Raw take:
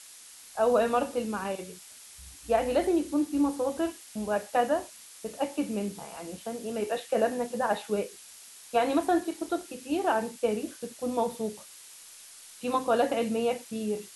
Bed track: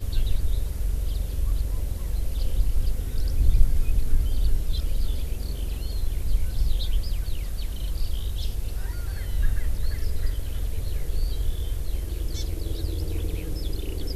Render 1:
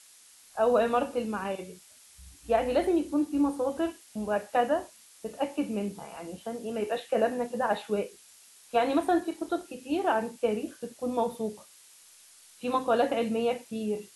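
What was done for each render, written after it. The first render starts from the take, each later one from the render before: noise print and reduce 6 dB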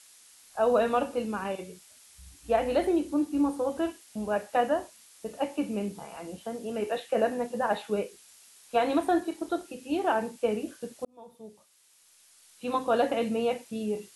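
11.05–12.97 s: fade in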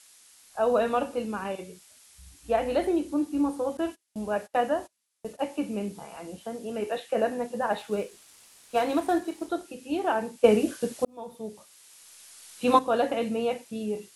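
3.77–5.42 s: gate -46 dBFS, range -24 dB; 7.78–9.47 s: CVSD coder 64 kbps; 10.44–12.79 s: gain +9 dB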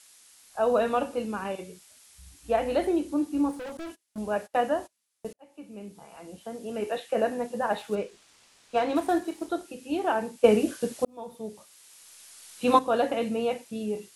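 3.51–4.18 s: overload inside the chain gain 35.5 dB; 5.33–6.83 s: fade in; 7.95–8.96 s: distance through air 65 m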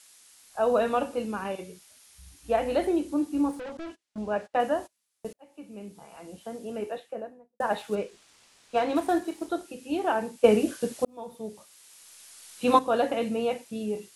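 1.31–2.51 s: band-stop 7.7 kHz; 3.60–4.60 s: distance through air 82 m; 6.48–7.60 s: studio fade out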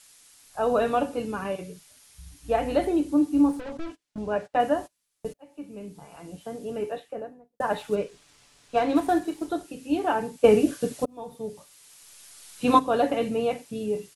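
bass shelf 170 Hz +11 dB; comb 6.9 ms, depth 43%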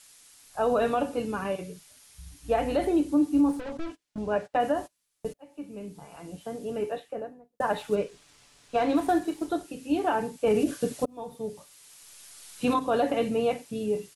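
peak limiter -15.5 dBFS, peak gain reduction 10.5 dB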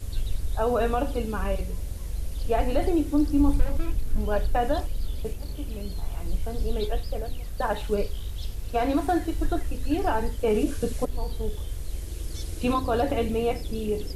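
add bed track -4.5 dB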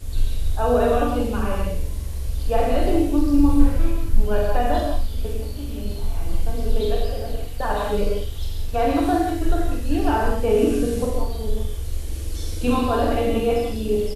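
doubling 45 ms -5 dB; gated-style reverb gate 210 ms flat, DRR -0.5 dB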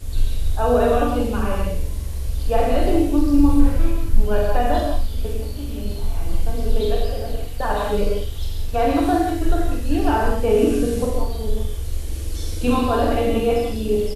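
trim +1.5 dB; peak limiter -2 dBFS, peak gain reduction 2 dB

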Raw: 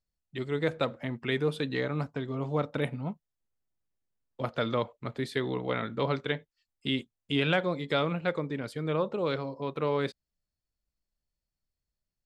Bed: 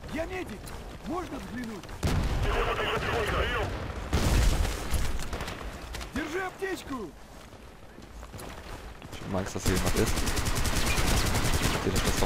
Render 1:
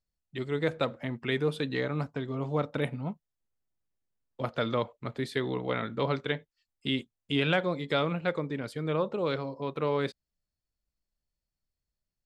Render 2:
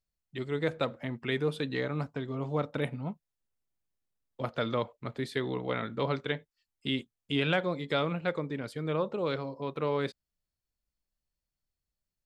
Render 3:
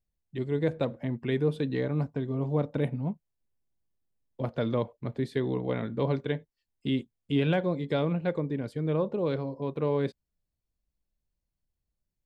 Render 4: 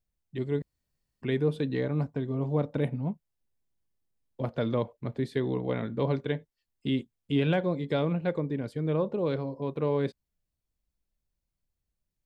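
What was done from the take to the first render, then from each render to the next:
no audible change
trim -1.5 dB
tilt shelf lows +6 dB, about 760 Hz; band-stop 1.3 kHz, Q 7.7
0.62–1.22 s: room tone

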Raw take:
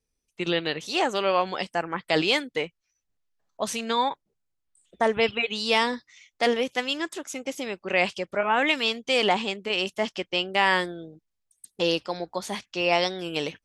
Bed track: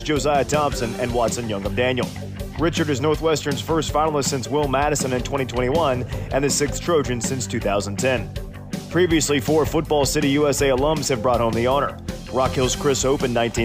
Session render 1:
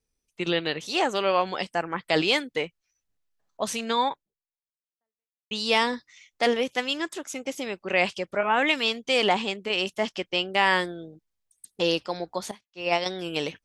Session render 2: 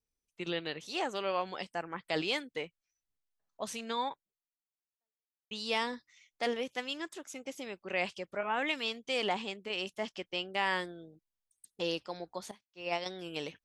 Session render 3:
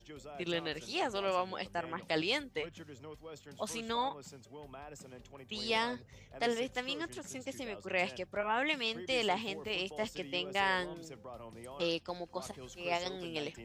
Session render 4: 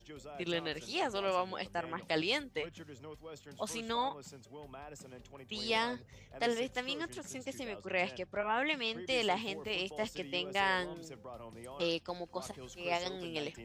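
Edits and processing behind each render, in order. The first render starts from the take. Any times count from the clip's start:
4.11–5.51 s: fade out exponential; 12.51–13.06 s: upward expansion 2.5:1, over -37 dBFS
trim -10 dB
add bed track -29.5 dB
7.81–9.06 s: distance through air 55 m

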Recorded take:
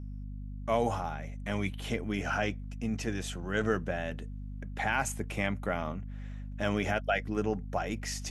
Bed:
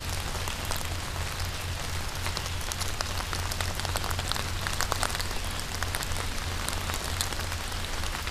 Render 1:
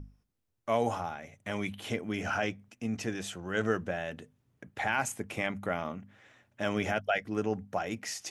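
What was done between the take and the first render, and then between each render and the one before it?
hum notches 50/100/150/200/250 Hz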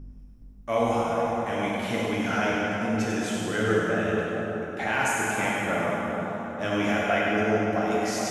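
on a send: two-band feedback delay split 1.4 kHz, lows 421 ms, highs 99 ms, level -5.5 dB; on the sum: plate-style reverb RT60 2.9 s, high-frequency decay 0.65×, DRR -5 dB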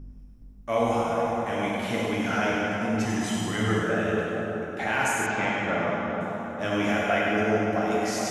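3.05–3.83 s: comb 1 ms, depth 60%; 5.26–6.21 s: low-pass 5.4 kHz 24 dB/octave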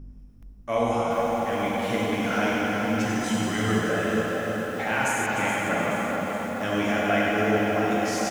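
feedback delay 299 ms, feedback 58%, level -9 dB; bit-crushed delay 425 ms, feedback 55%, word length 7-bit, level -8 dB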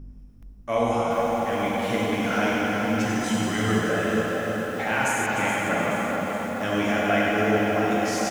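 trim +1 dB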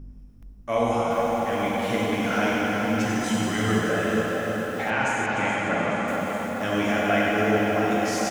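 4.90–6.08 s: distance through air 75 m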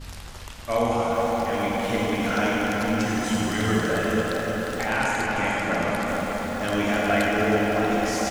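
add bed -8.5 dB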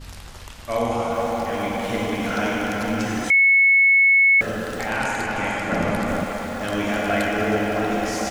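3.30–4.41 s: bleep 2.2 kHz -11.5 dBFS; 5.72–6.24 s: bass shelf 370 Hz +6.5 dB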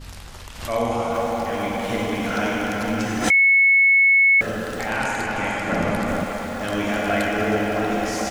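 swell ahead of each attack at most 90 dB/s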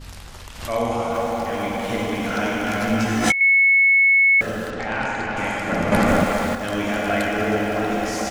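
2.65–3.41 s: doubling 18 ms -2 dB; 4.70–5.37 s: distance through air 110 m; 5.92–6.55 s: gain +6.5 dB

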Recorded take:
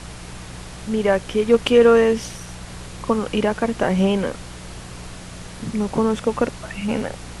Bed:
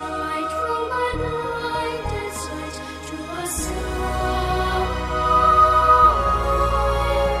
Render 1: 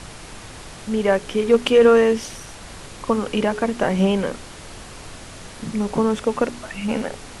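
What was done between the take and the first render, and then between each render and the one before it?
de-hum 60 Hz, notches 7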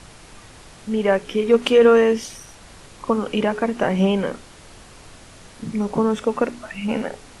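noise print and reduce 6 dB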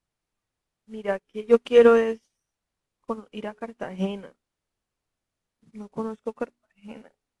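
upward expansion 2.5:1, over -37 dBFS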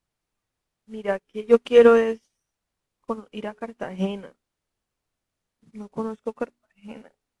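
trim +1.5 dB

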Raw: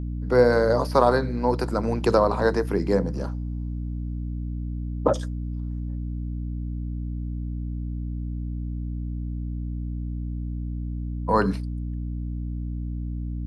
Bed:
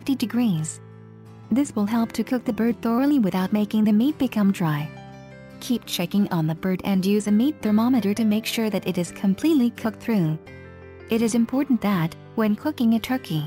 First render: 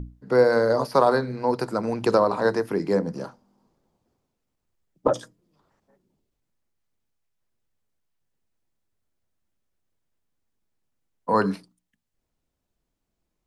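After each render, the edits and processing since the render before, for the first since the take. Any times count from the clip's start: hum notches 60/120/180/240/300 Hz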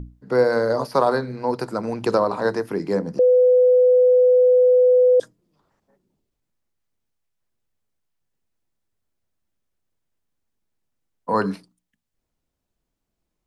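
3.19–5.20 s: bleep 501 Hz -11 dBFS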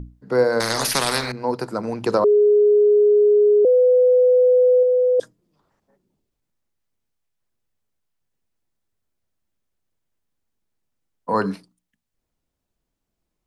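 0.60–1.32 s: spectrum-flattening compressor 4:1; 2.24–3.65 s: bleep 416 Hz -11 dBFS; 4.78–5.19 s: doubling 49 ms -11 dB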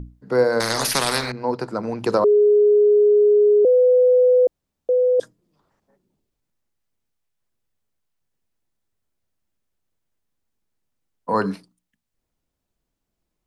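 1.30–1.99 s: distance through air 56 m; 4.47–4.89 s: room tone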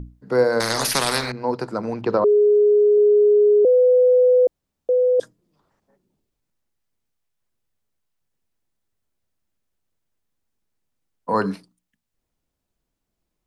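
2.01–2.98 s: distance through air 230 m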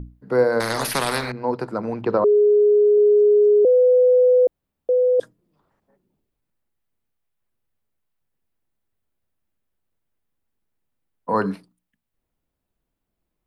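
peaking EQ 6.1 kHz -8.5 dB 1.3 oct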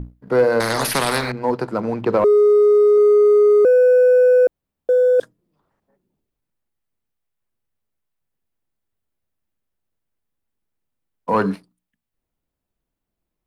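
waveshaping leveller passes 1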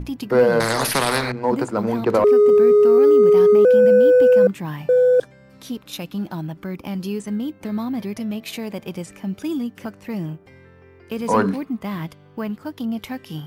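add bed -6 dB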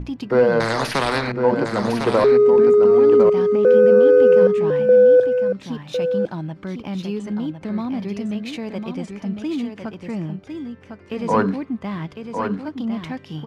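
distance through air 88 m; delay 1054 ms -6.5 dB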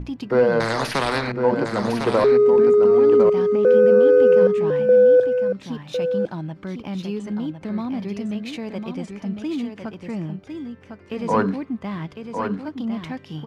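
trim -1.5 dB

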